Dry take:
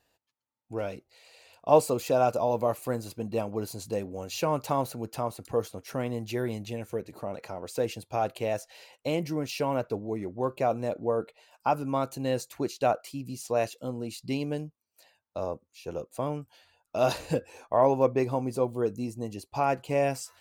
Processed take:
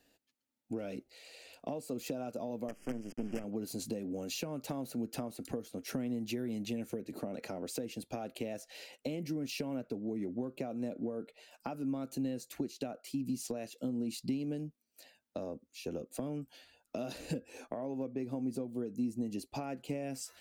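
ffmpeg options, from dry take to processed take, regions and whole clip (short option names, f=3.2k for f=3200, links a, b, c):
-filter_complex "[0:a]asettb=1/sr,asplit=3[a][b][c];[a]atrim=end=2.684[d];[b]atrim=start=2.68:end=3.44,asetpts=PTS-STARTPTS,afade=t=in:d=0.004:c=qsin,afade=t=out:st=0.756:d=0.004:c=qsin,acrusher=bits=5:dc=4:mix=0:aa=0.000001,adynamicsmooth=sensitivity=6.5:basefreq=7.5k,asuperstop=centerf=3900:order=12:qfactor=2.5[e];[c]atrim=start=3.436[f];[d][e]acrossfade=d=0.004:c1=hsin:c2=qsin[g];[g][f]acrossfade=d=0.004:c1=qsin:c2=hsin,acompressor=threshold=-36dB:ratio=4,equalizer=f=100:t=o:w=0.67:g=-10,equalizer=f=250:t=o:w=0.67:g=10,equalizer=f=1k:t=o:w=0.67:g=-10,acrossover=split=190[h][i];[i]acompressor=threshold=-38dB:ratio=6[j];[h][j]amix=inputs=2:normalize=0,volume=2dB"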